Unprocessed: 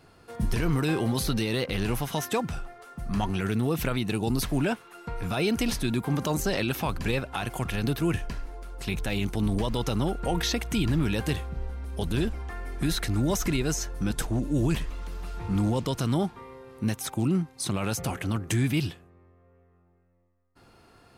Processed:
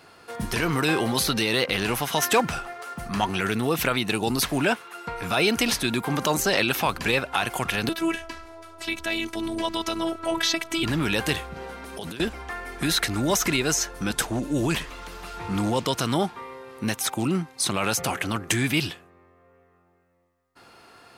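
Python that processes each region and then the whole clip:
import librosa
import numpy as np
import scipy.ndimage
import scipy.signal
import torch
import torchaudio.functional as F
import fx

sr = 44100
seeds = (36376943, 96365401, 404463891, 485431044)

y = fx.chain(x, sr, fx.notch(hz=3600.0, q=28.0),
    fx.leveller(passes=1), at=(2.22, 3.08))
y = fx.chain(y, sr, fx.high_shelf(hz=8700.0, db=-6.0),
    fx.robotise(hz=330.0), at=(7.89, 10.83))
y = fx.chain(y, sr, fx.highpass(hz=120.0, slope=12),
    fx.over_compress(threshold_db=-36.0, ratio=-1.0), at=(11.56, 12.2))
y = fx.lowpass(y, sr, hz=1600.0, slope=6)
y = fx.tilt_eq(y, sr, slope=4.0)
y = y * 10.0 ** (9.0 / 20.0)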